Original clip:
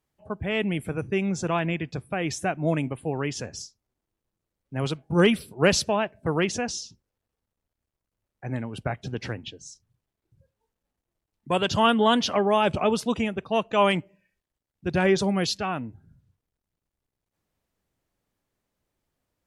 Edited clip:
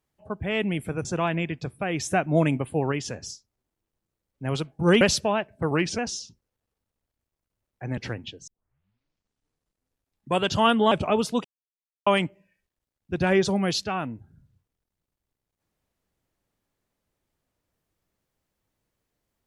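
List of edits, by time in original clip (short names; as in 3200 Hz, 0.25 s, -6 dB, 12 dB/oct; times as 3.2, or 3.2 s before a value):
1.05–1.36 cut
2.35–3.23 gain +3.5 dB
5.32–5.65 cut
6.35–6.6 speed 91%
8.59–9.17 cut
9.67 tape start 1.85 s
12.11–12.65 cut
13.18–13.8 mute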